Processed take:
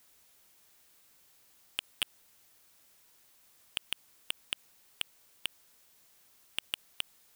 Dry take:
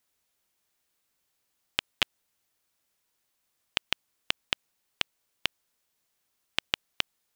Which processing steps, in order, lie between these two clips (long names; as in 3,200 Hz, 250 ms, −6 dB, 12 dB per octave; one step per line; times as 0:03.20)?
hard clipping −18.5 dBFS, distortion −4 dB
brickwall limiter −29 dBFS, peak gain reduction 10.5 dB
high-shelf EQ 9,200 Hz +3.5 dB
level +11.5 dB